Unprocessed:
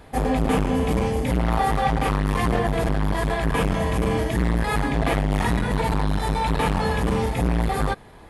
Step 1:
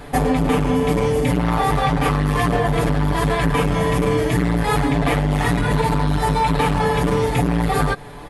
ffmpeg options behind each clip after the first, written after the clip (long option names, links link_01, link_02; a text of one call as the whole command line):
ffmpeg -i in.wav -af "aecho=1:1:6.9:0.7,acompressor=threshold=-23dB:ratio=6,volume=8.5dB" out.wav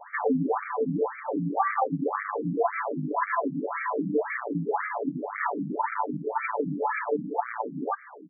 ffmpeg -i in.wav -af "lowshelf=frequency=180:gain=-12,afftfilt=real='re*between(b*sr/1024,210*pow(1700/210,0.5+0.5*sin(2*PI*1.9*pts/sr))/1.41,210*pow(1700/210,0.5+0.5*sin(2*PI*1.9*pts/sr))*1.41)':imag='im*between(b*sr/1024,210*pow(1700/210,0.5+0.5*sin(2*PI*1.9*pts/sr))/1.41,210*pow(1700/210,0.5+0.5*sin(2*PI*1.9*pts/sr))*1.41)':win_size=1024:overlap=0.75" out.wav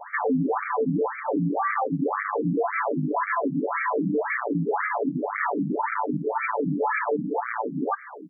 ffmpeg -i in.wav -af "alimiter=limit=-22.5dB:level=0:latency=1:release=46,volume=5.5dB" out.wav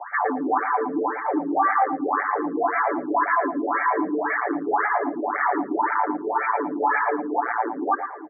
ffmpeg -i in.wav -filter_complex "[0:a]highpass=frequency=320:width=0.5412,highpass=frequency=320:width=1.3066,equalizer=frequency=330:width_type=q:width=4:gain=10,equalizer=frequency=480:width_type=q:width=4:gain=-6,equalizer=frequency=760:width_type=q:width=4:gain=7,equalizer=frequency=1100:width_type=q:width=4:gain=5,equalizer=frequency=1600:width_type=q:width=4:gain=5,lowpass=frequency=2100:width=0.5412,lowpass=frequency=2100:width=1.3066,asplit=2[link_01][link_02];[link_02]aecho=0:1:113|226:0.355|0.0568[link_03];[link_01][link_03]amix=inputs=2:normalize=0" out.wav